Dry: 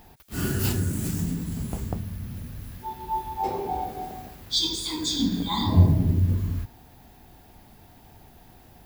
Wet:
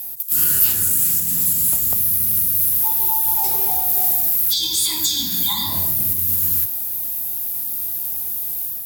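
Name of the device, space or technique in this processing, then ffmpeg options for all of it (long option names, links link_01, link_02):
FM broadcast chain: -filter_complex "[0:a]highpass=70,dynaudnorm=framelen=270:gausssize=3:maxgain=5.5dB,acrossover=split=160|710|3600[link_01][link_02][link_03][link_04];[link_01]acompressor=threshold=-33dB:ratio=4[link_05];[link_02]acompressor=threshold=-37dB:ratio=4[link_06];[link_03]acompressor=threshold=-27dB:ratio=4[link_07];[link_04]acompressor=threshold=-41dB:ratio=4[link_08];[link_05][link_06][link_07][link_08]amix=inputs=4:normalize=0,aemphasis=mode=production:type=75fm,alimiter=limit=-14.5dB:level=0:latency=1:release=165,asoftclip=type=hard:threshold=-18.5dB,lowpass=frequency=15000:width=0.5412,lowpass=frequency=15000:width=1.3066,aemphasis=mode=production:type=75fm,volume=-1dB"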